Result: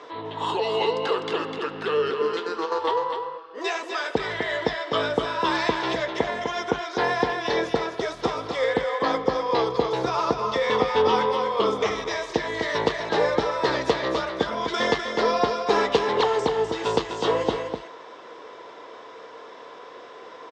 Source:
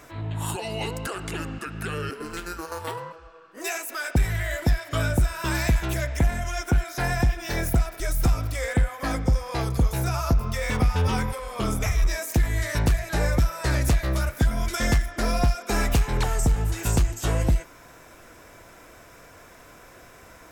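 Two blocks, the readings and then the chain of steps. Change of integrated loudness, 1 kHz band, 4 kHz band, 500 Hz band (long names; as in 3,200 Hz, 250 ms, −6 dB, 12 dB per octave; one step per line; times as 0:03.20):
+1.0 dB, +8.0 dB, +5.5 dB, +9.5 dB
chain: loudspeaker in its box 390–4,400 Hz, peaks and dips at 450 Hz +10 dB, 660 Hz −4 dB, 1,000 Hz +6 dB, 1,500 Hz −7 dB, 2,400 Hz −8 dB, 3,400 Hz +4 dB
single-tap delay 252 ms −6.5 dB
level +6 dB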